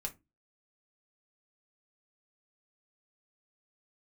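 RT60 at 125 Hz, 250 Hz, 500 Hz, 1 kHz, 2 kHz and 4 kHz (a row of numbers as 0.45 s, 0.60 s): 0.35 s, 0.35 s, 0.25 s, 0.20 s, 0.20 s, 0.15 s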